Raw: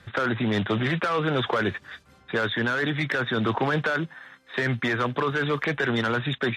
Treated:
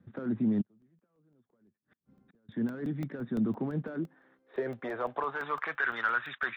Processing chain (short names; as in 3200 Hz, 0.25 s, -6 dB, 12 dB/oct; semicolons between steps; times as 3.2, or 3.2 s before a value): 0.61–2.49 flipped gate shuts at -30 dBFS, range -35 dB; band-pass sweep 220 Hz -> 1400 Hz, 3.79–5.85; crackling interface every 0.17 s, samples 64, zero, from 0.65